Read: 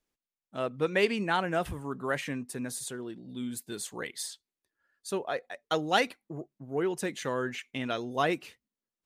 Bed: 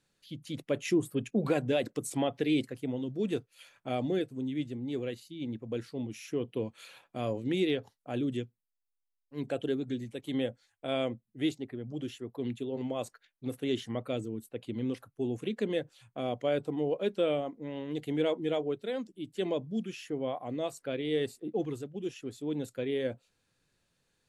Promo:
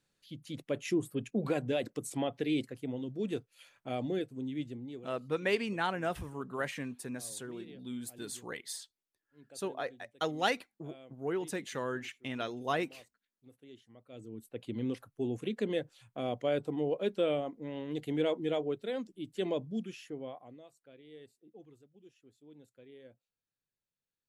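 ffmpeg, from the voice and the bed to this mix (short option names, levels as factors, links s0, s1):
-filter_complex "[0:a]adelay=4500,volume=0.596[s0];[1:a]volume=7.5,afade=t=out:st=4.7:d=0.42:silence=0.112202,afade=t=in:st=14.08:d=0.56:silence=0.0891251,afade=t=out:st=19.62:d=1.02:silence=0.0944061[s1];[s0][s1]amix=inputs=2:normalize=0"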